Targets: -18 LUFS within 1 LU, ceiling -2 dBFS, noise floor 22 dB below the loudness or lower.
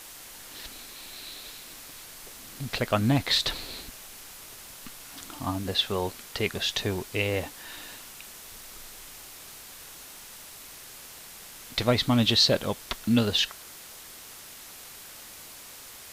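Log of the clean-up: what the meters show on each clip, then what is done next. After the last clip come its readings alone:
noise floor -46 dBFS; noise floor target -49 dBFS; loudness -26.5 LUFS; peak -7.5 dBFS; loudness target -18.0 LUFS
-> noise print and reduce 6 dB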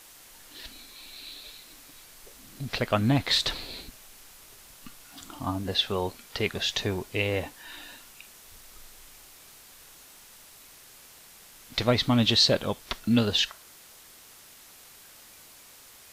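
noise floor -52 dBFS; loudness -26.0 LUFS; peak -7.5 dBFS; loudness target -18.0 LUFS
-> gain +8 dB; limiter -2 dBFS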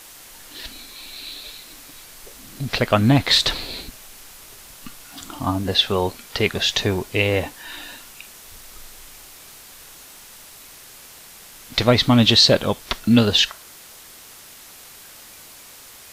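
loudness -18.5 LUFS; peak -2.0 dBFS; noise floor -44 dBFS

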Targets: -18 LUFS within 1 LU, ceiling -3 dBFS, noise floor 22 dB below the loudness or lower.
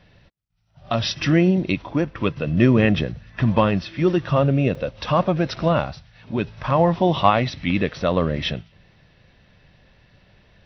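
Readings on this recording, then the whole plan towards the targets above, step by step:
dropouts 1; longest dropout 3.2 ms; loudness -21.0 LUFS; peak -2.5 dBFS; loudness target -18.0 LUFS
-> interpolate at 4.75, 3.2 ms; gain +3 dB; limiter -3 dBFS

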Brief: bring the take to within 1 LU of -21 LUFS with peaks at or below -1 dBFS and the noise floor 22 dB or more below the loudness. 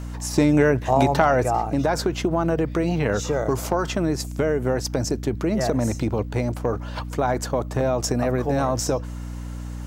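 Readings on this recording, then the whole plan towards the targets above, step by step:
hum 60 Hz; harmonics up to 300 Hz; hum level -29 dBFS; loudness -23.0 LUFS; peak -2.0 dBFS; loudness target -21.0 LUFS
-> de-hum 60 Hz, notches 5; gain +2 dB; limiter -1 dBFS

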